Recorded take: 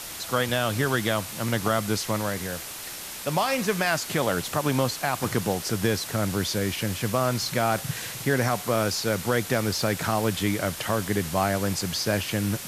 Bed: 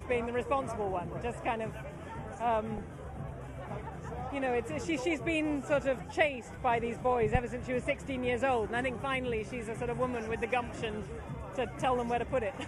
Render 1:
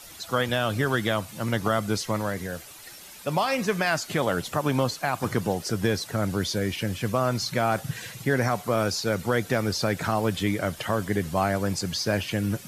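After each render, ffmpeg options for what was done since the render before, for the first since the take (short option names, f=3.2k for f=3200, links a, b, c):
-af "afftdn=nr=11:nf=-37"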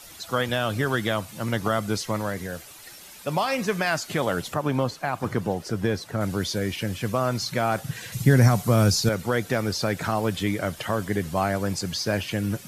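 -filter_complex "[0:a]asettb=1/sr,asplit=3[a][b][c];[a]atrim=end=4.544[d];[b]atrim=start=4.54:end=6.21,asetpts=PTS-STARTPTS,afade=t=in:d=0.004:c=qsin,afade=t=out:st=1.666:d=0.004:c=qsin,highshelf=f=3k:g=-8[e];[c]atrim=start=6.206[f];[d][e]acrossfade=d=0.004:c1=hsin:c2=qsin[g];[g][f]acrossfade=d=0.004:c1=qsin:c2=hsin,asettb=1/sr,asplit=3[h][i][j];[h]atrim=end=8.124[k];[i]atrim=start=8.12:end=9.09,asetpts=PTS-STARTPTS,afade=t=in:d=0.004:c=qsin,afade=t=out:st=0.966:d=0.004:c=qsin,bass=f=250:g=13,treble=f=4k:g=7[l];[j]atrim=start=9.086[m];[k][l]acrossfade=d=0.004:c1=hsin:c2=qsin[n];[n][m]acrossfade=d=0.004:c1=qsin:c2=hsin"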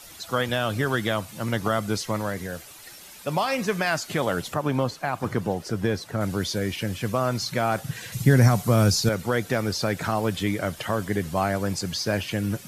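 -af anull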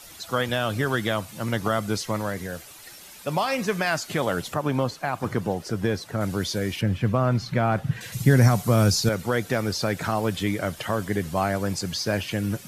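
-filter_complex "[0:a]asettb=1/sr,asplit=3[a][b][c];[a]atrim=end=6.814[d];[b]atrim=start=6.81:end=8.01,asetpts=PTS-STARTPTS,afade=t=in:d=0.004:c=qsin,afade=t=out:st=1.196:d=0.004:c=qsin,bass=f=250:g=7,treble=f=4k:g=-13[e];[c]atrim=start=8.006[f];[d][e]acrossfade=d=0.004:c1=hsin:c2=qsin[g];[g][f]acrossfade=d=0.004:c1=qsin:c2=hsin"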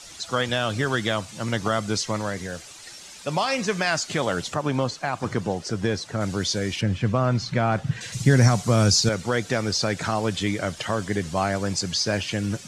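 -af "lowpass=f=7.3k:w=0.5412,lowpass=f=7.3k:w=1.3066,aemphasis=mode=production:type=50kf"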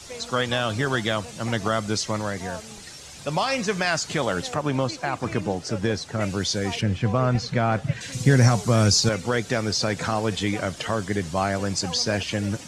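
-filter_complex "[1:a]volume=-7.5dB[a];[0:a][a]amix=inputs=2:normalize=0"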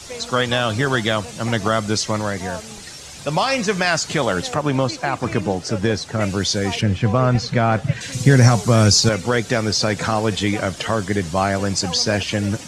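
-af "volume=5dB,alimiter=limit=-1dB:level=0:latency=1"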